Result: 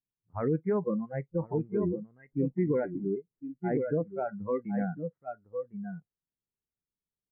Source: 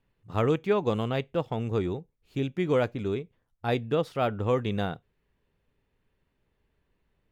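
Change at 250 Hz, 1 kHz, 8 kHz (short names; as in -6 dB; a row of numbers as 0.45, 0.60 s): 0.0 dB, -7.0 dB, n/a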